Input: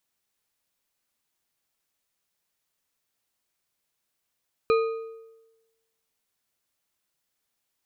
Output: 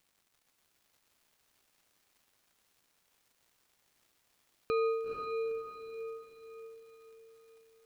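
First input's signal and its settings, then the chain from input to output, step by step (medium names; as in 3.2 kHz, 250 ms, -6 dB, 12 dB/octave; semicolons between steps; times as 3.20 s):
metal hit bar, lowest mode 451 Hz, modes 4, decay 1.09 s, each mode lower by 7 dB, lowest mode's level -16.5 dB
peak limiter -23.5 dBFS; crackle 290 per s -58 dBFS; echo that smears into a reverb 468 ms, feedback 47%, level -3.5 dB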